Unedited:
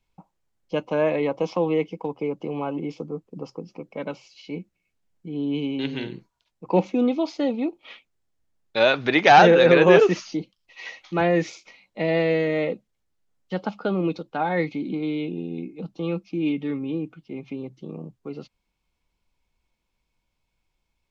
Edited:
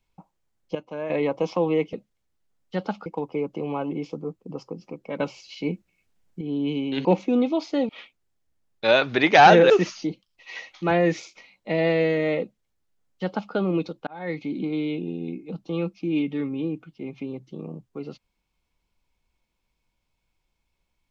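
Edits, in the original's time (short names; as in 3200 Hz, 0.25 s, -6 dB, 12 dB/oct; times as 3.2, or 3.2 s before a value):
0.75–1.1 gain -10 dB
4.07–5.28 gain +5.5 dB
5.92–6.71 cut
7.55–7.81 cut
9.62–10 cut
12.71–13.84 copy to 1.93
14.37–14.83 fade in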